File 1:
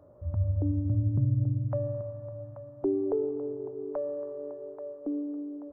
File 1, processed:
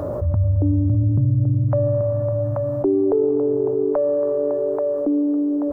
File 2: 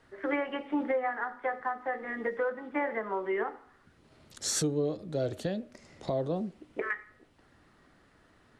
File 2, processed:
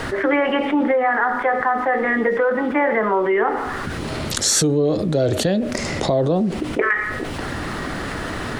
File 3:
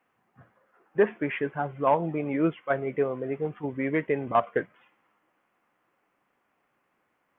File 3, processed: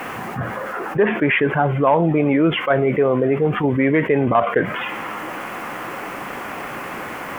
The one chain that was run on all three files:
envelope flattener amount 70%
loudness normalisation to −20 LKFS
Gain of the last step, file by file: +6.5, +10.0, +3.5 decibels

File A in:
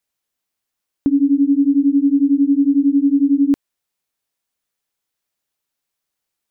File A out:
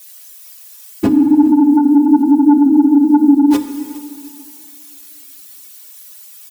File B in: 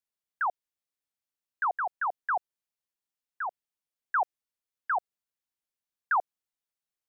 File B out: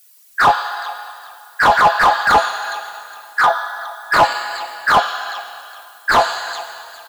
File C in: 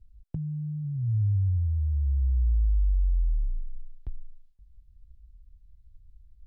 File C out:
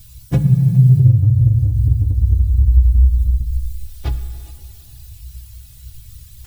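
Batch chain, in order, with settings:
random phases in long frames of 50 ms
parametric band 100 Hz +12 dB 0.62 octaves
in parallel at −1 dB: brickwall limiter −12.5 dBFS
on the sum: downward compressor 4 to 1, threshold −20 dBFS
spectral tilt +4.5 dB per octave
stiff-string resonator 61 Hz, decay 0.27 s, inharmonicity 0.03
sine wavefolder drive 12 dB, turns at −16.5 dBFS
repeating echo 413 ms, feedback 26%, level −22 dB
dense smooth reverb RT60 2.5 s, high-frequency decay 0.9×, DRR 9.5 dB
slew-rate limiting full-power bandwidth 100 Hz
normalise the peak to −1.5 dBFS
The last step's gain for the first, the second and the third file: +12.0, +12.5, +16.5 decibels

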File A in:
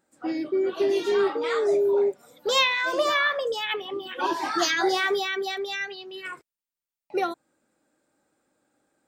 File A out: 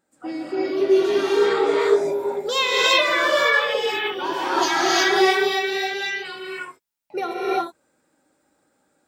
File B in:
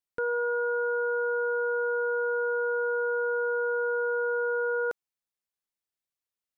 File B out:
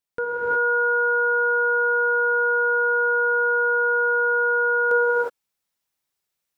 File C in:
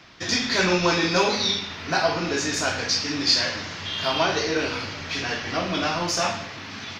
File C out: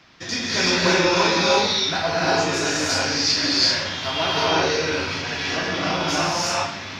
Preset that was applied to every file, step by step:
reverb whose tail is shaped and stops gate 390 ms rising, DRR −6 dB
loudness normalisation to −20 LKFS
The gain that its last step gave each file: −1.0, +3.5, −3.5 decibels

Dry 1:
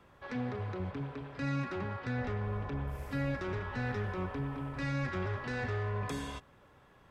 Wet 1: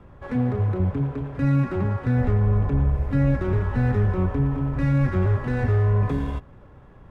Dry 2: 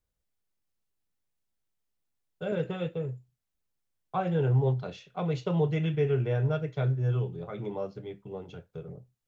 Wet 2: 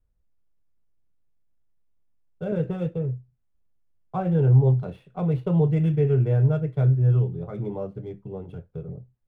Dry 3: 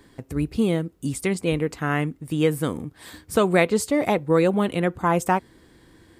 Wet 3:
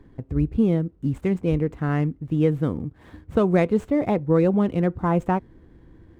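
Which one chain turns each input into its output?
running median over 9 samples
spectral tilt −3 dB per octave
loudness normalisation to −23 LKFS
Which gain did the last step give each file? +7.0, −0.5, −4.0 decibels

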